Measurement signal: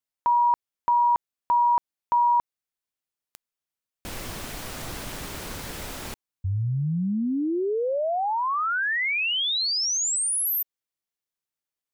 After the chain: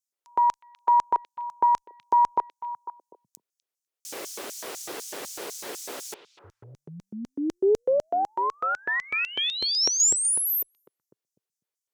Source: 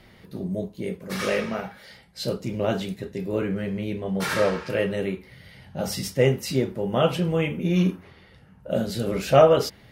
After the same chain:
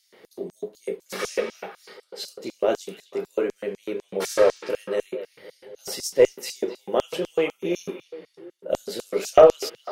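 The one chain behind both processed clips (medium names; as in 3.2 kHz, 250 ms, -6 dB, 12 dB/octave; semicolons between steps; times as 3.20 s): LFO high-pass square 4 Hz 410–6200 Hz; Chebyshev shaper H 2 -24 dB, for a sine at -1.5 dBFS; repeats whose band climbs or falls 249 ms, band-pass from 2.9 kHz, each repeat -1.4 oct, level -10 dB; trim -1 dB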